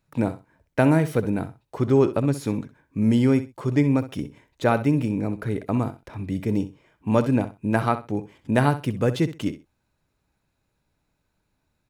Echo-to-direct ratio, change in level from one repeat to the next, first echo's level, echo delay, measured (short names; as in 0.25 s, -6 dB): -13.5 dB, -14.5 dB, -13.5 dB, 64 ms